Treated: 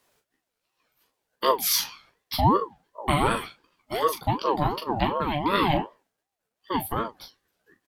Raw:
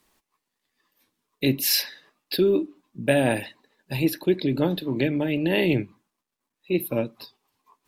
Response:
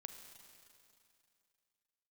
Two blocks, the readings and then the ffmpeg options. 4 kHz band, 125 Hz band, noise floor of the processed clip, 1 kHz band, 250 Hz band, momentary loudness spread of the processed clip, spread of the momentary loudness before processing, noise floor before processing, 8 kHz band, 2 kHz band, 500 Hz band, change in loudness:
-1.0 dB, -1.5 dB, -84 dBFS, +14.0 dB, -6.0 dB, 12 LU, 12 LU, -83 dBFS, +1.0 dB, -3.0 dB, -4.0 dB, -1.5 dB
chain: -af "aecho=1:1:15|41:0.562|0.376,aeval=exprs='val(0)*sin(2*PI*620*n/s+620*0.3/2.7*sin(2*PI*2.7*n/s))':c=same"

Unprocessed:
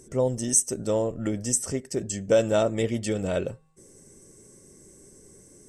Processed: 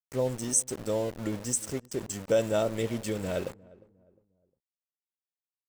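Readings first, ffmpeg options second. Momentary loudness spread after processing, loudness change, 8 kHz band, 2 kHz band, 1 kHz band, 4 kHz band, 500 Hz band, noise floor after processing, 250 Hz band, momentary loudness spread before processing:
9 LU, -4.5 dB, -4.5 dB, -3.5 dB, -4.0 dB, -3.5 dB, -4.5 dB, under -85 dBFS, -5.0 dB, 9 LU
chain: -filter_complex "[0:a]aeval=exprs='val(0)*gte(abs(val(0)),0.0211)':c=same,asplit=2[a][b];[b]adelay=355,lowpass=f=830:p=1,volume=-21.5dB,asplit=2[c][d];[d]adelay=355,lowpass=f=830:p=1,volume=0.39,asplit=2[e][f];[f]adelay=355,lowpass=f=830:p=1,volume=0.39[g];[a][c][e][g]amix=inputs=4:normalize=0,volume=-4.5dB"

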